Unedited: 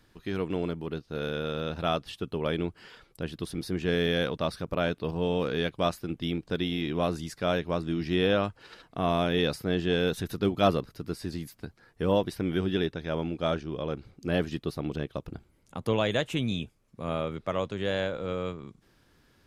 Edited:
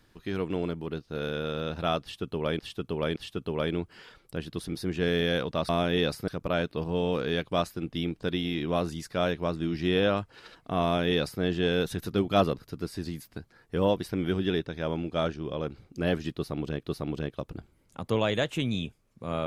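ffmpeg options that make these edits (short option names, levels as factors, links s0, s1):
-filter_complex "[0:a]asplit=6[s0][s1][s2][s3][s4][s5];[s0]atrim=end=2.592[s6];[s1]atrim=start=2.018:end=2.592[s7];[s2]atrim=start=2.018:end=4.552[s8];[s3]atrim=start=9.098:end=9.692[s9];[s4]atrim=start=4.548:end=15.102[s10];[s5]atrim=start=14.598[s11];[s6][s7]acrossfade=d=0.004:c1=hsin:c2=hsin[s12];[s12][s8]acrossfade=d=0.004:c1=hsin:c2=hsin[s13];[s13][s9]acrossfade=d=0.004:c1=hsin:c2=hsin[s14];[s14][s10]acrossfade=d=0.004:c1=hsin:c2=hsin[s15];[s15][s11]acrossfade=d=0.004:c1=hsin:c2=hsin"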